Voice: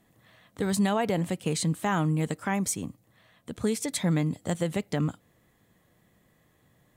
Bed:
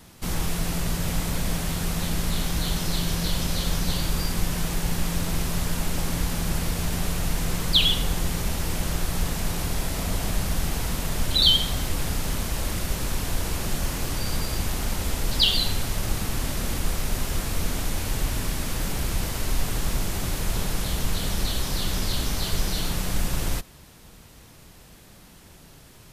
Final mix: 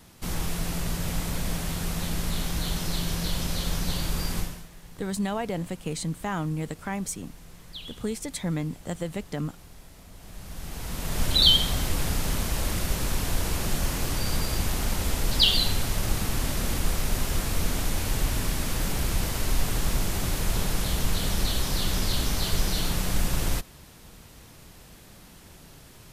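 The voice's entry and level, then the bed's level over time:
4.40 s, -3.5 dB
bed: 4.39 s -3 dB
4.69 s -21.5 dB
10.13 s -21.5 dB
11.23 s 0 dB

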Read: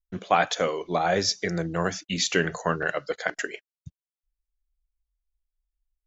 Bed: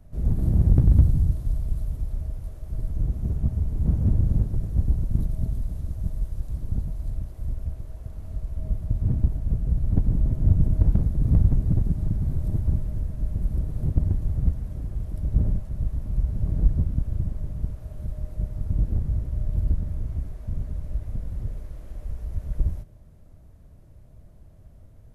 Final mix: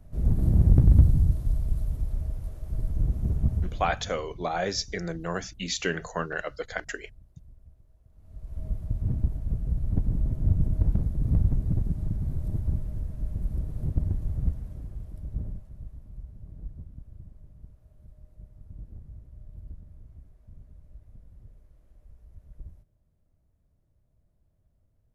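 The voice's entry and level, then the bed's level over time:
3.50 s, -5.0 dB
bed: 3.56 s -0.5 dB
4.13 s -22.5 dB
8.07 s -22.5 dB
8.58 s -4.5 dB
14.48 s -4.5 dB
16.45 s -19.5 dB

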